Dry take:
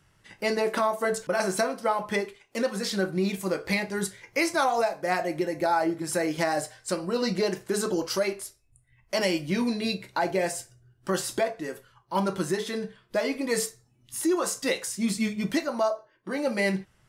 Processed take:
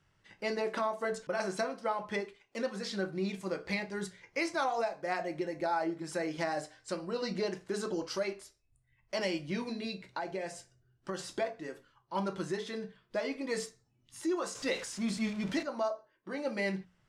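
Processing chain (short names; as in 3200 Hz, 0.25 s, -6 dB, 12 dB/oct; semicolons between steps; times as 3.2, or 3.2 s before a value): 14.55–15.63 zero-crossing step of -32 dBFS; LPF 6300 Hz 12 dB/oct; notches 60/120/180/240/300 Hz; 9.71–11.19 compressor 3:1, threshold -27 dBFS, peak gain reduction 5 dB; gain -7.5 dB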